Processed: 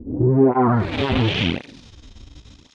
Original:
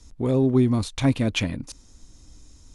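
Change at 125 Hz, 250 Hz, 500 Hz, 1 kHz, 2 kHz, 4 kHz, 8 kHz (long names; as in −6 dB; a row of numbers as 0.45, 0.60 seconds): +3.5 dB, +2.5 dB, +6.0 dB, +14.0 dB, +6.5 dB, +6.5 dB, below −10 dB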